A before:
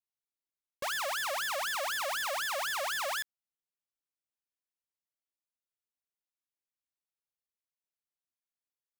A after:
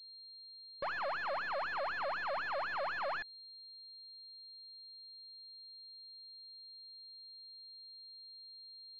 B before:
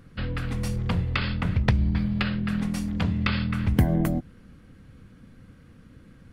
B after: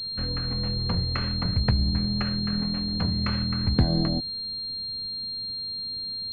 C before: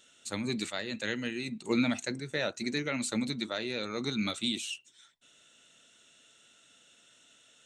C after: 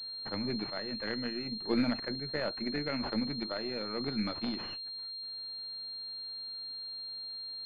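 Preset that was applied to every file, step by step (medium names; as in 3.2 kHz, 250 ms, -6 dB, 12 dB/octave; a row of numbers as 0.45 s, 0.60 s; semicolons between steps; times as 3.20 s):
partial rectifier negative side -3 dB; class-D stage that switches slowly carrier 4.2 kHz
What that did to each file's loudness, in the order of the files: -9.5 LU, -0.5 LU, -2.5 LU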